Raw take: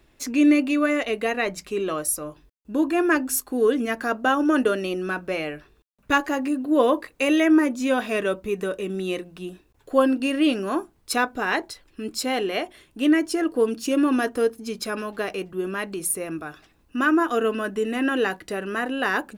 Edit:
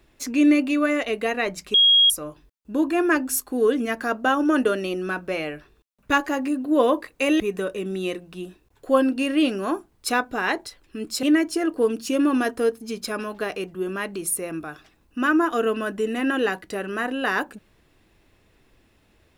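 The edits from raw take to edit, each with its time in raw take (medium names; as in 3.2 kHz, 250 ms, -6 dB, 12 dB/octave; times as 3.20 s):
1.74–2.10 s: bleep 3.28 kHz -12 dBFS
7.40–8.44 s: delete
12.27–13.01 s: delete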